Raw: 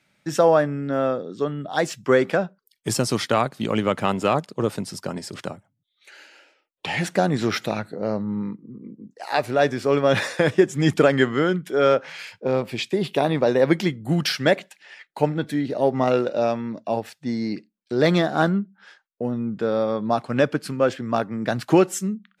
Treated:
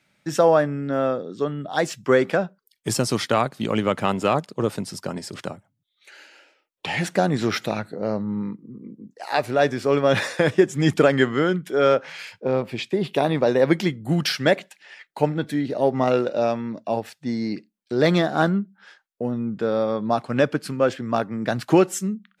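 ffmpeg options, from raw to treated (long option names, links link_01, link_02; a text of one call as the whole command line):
ffmpeg -i in.wav -filter_complex "[0:a]asettb=1/sr,asplit=3[link_01][link_02][link_03];[link_01]atrim=end=12.454[link_04];[link_02]atrim=start=12.45:end=13.14,asetpts=PTS-STARTPTS,afade=type=in:duration=0.004:curve=qsin,afade=type=out:start_time=0.686:duration=0.004:curve=qsin,highshelf=frequency=3900:gain=-7[link_05];[link_03]atrim=start=13.136[link_06];[link_04][link_05]acrossfade=duration=0.004:curve1=hsin:curve2=qsin[link_07];[link_07][link_06]acrossfade=duration=0.004:curve1=qsin:curve2=hsin" out.wav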